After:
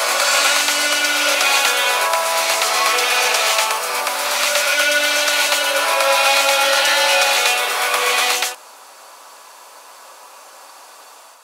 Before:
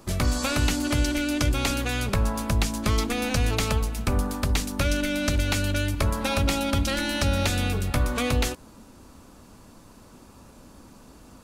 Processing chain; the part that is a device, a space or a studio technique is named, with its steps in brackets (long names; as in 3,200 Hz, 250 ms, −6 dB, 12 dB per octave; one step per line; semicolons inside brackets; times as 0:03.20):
ghost voice (reversed playback; convolution reverb RT60 2.5 s, pre-delay 70 ms, DRR −5.5 dB; reversed playback; high-pass filter 670 Hz 24 dB per octave)
level +9 dB